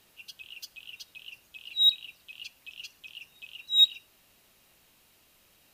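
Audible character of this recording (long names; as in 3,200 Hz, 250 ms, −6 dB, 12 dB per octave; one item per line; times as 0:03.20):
background noise floor −64 dBFS
spectral slope +1.5 dB per octave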